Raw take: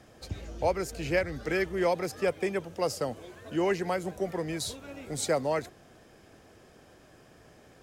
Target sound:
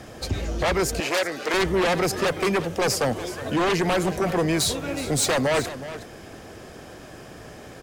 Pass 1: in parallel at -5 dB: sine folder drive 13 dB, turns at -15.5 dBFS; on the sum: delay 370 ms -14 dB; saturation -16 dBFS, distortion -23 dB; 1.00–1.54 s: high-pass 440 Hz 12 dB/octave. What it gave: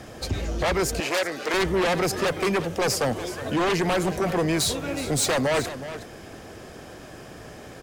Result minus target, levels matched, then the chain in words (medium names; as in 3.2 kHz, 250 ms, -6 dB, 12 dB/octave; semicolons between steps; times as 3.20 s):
saturation: distortion +12 dB
in parallel at -5 dB: sine folder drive 13 dB, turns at -15.5 dBFS; on the sum: delay 370 ms -14 dB; saturation -9.5 dBFS, distortion -35 dB; 1.00–1.54 s: high-pass 440 Hz 12 dB/octave